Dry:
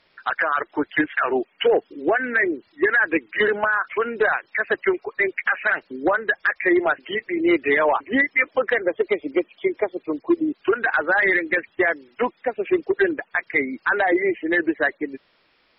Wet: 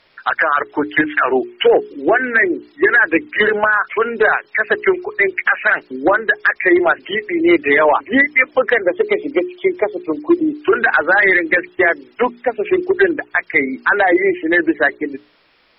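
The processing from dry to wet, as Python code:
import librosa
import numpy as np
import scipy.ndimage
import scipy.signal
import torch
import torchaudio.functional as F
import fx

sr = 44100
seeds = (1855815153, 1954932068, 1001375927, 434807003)

y = fx.hum_notches(x, sr, base_hz=60, count=7)
y = fx.band_squash(y, sr, depth_pct=40, at=(10.74, 11.68))
y = y * librosa.db_to_amplitude(6.5)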